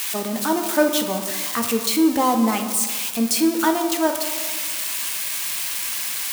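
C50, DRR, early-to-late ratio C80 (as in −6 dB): 7.5 dB, 4.5 dB, 9.0 dB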